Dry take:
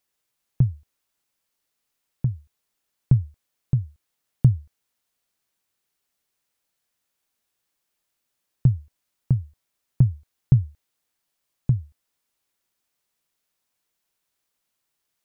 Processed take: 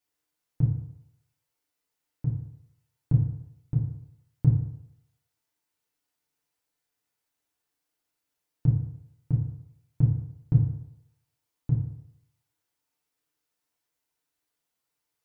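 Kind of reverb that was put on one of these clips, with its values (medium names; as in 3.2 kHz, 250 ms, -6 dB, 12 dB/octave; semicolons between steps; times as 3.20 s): FDN reverb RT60 0.78 s, low-frequency decay 0.85×, high-frequency decay 0.5×, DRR -5 dB; trim -9.5 dB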